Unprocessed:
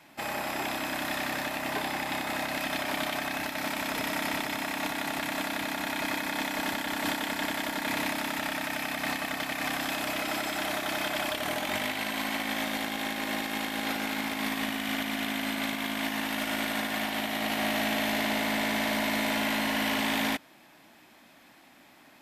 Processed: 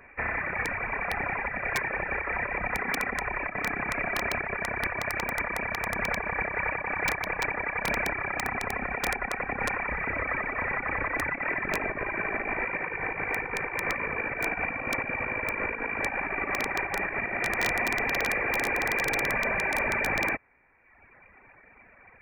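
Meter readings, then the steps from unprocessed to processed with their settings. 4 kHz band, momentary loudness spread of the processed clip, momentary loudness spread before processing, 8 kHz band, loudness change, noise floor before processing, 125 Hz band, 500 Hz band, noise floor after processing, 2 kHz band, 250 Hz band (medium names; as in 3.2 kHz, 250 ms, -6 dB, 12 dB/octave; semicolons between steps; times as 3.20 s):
-10.5 dB, 4 LU, 4 LU, -5.0 dB, +1.5 dB, -56 dBFS, +3.5 dB, +1.5 dB, -56 dBFS, +4.0 dB, -7.0 dB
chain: reverb removal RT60 1.2 s; frequency inversion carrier 2.6 kHz; integer overflow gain 23.5 dB; trim +5 dB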